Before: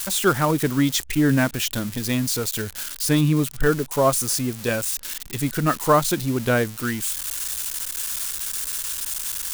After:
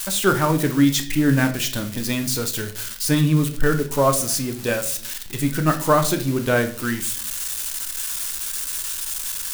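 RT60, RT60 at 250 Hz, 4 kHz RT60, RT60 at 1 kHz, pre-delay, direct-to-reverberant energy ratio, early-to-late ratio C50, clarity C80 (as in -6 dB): 0.50 s, 0.70 s, 0.45 s, 0.45 s, 3 ms, 5.5 dB, 12.5 dB, 16.5 dB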